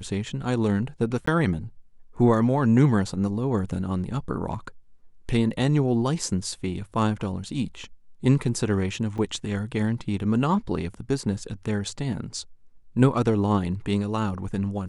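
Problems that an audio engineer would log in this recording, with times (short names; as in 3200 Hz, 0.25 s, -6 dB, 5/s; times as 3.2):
1.26–1.27 gap 14 ms
9.18 gap 3.8 ms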